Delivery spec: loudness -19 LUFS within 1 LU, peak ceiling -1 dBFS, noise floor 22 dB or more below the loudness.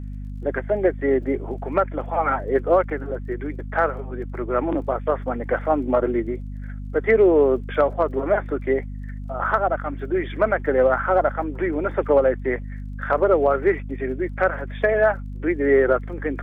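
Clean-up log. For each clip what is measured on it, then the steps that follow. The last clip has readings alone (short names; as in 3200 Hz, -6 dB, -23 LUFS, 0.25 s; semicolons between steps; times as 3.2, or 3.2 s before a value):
ticks 23/s; hum 50 Hz; harmonics up to 250 Hz; hum level -29 dBFS; loudness -22.0 LUFS; peak -6.0 dBFS; loudness target -19.0 LUFS
-> de-click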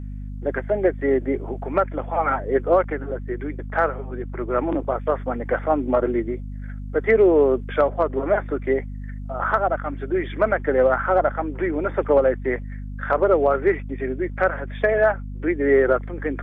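ticks 0/s; hum 50 Hz; harmonics up to 250 Hz; hum level -29 dBFS
-> de-hum 50 Hz, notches 5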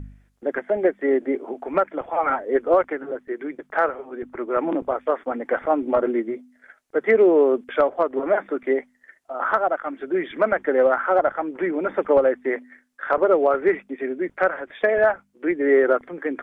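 hum none; loudness -22.0 LUFS; peak -6.0 dBFS; loudness target -19.0 LUFS
-> gain +3 dB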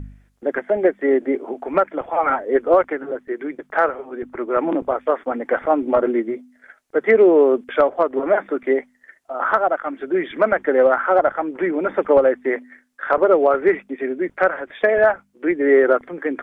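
loudness -19.0 LUFS; peak -3.0 dBFS; noise floor -60 dBFS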